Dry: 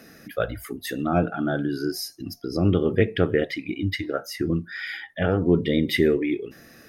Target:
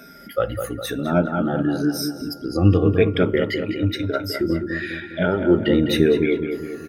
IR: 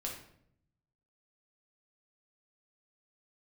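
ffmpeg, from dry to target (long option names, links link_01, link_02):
-filter_complex "[0:a]afftfilt=real='re*pow(10,16/40*sin(2*PI*(1.6*log(max(b,1)*sr/1024/100)/log(2)-(-0.97)*(pts-256)/sr)))':imag='im*pow(10,16/40*sin(2*PI*(1.6*log(max(b,1)*sr/1024/100)/log(2)-(-0.97)*(pts-256)/sr)))':win_size=1024:overlap=0.75,asplit=2[link_01][link_02];[link_02]adelay=204,lowpass=frequency=2100:poles=1,volume=-6.5dB,asplit=2[link_03][link_04];[link_04]adelay=204,lowpass=frequency=2100:poles=1,volume=0.55,asplit=2[link_05][link_06];[link_06]adelay=204,lowpass=frequency=2100:poles=1,volume=0.55,asplit=2[link_07][link_08];[link_08]adelay=204,lowpass=frequency=2100:poles=1,volume=0.55,asplit=2[link_09][link_10];[link_10]adelay=204,lowpass=frequency=2100:poles=1,volume=0.55,asplit=2[link_11][link_12];[link_12]adelay=204,lowpass=frequency=2100:poles=1,volume=0.55,asplit=2[link_13][link_14];[link_14]adelay=204,lowpass=frequency=2100:poles=1,volume=0.55[link_15];[link_01][link_03][link_05][link_07][link_09][link_11][link_13][link_15]amix=inputs=8:normalize=0,aeval=exprs='val(0)+0.00501*sin(2*PI*1400*n/s)':channel_layout=same"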